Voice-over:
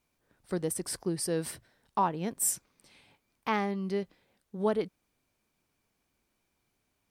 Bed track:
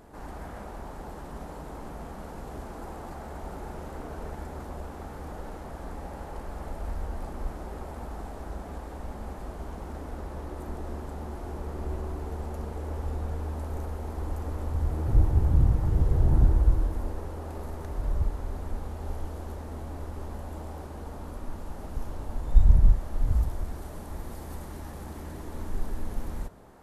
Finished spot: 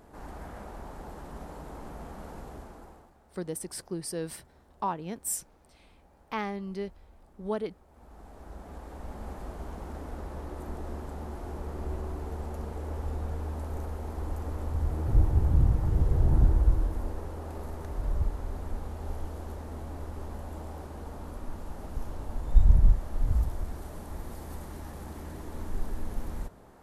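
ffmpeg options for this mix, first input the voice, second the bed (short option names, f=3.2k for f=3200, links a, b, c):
-filter_complex "[0:a]adelay=2850,volume=-3.5dB[a];[1:a]volume=17.5dB,afade=t=out:st=2.35:d=0.77:silence=0.112202,afade=t=in:st=7.88:d=1.44:silence=0.1[b];[a][b]amix=inputs=2:normalize=0"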